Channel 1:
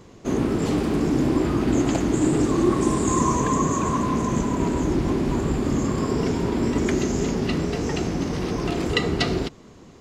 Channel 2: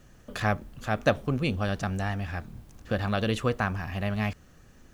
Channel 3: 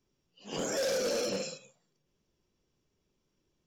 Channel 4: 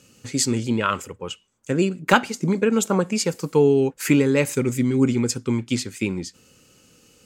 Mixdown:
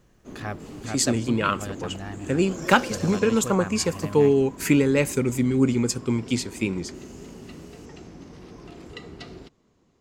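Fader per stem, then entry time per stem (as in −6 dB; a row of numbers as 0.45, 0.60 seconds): −18.0, −7.0, −6.0, −1.5 decibels; 0.00, 0.00, 1.90, 0.60 seconds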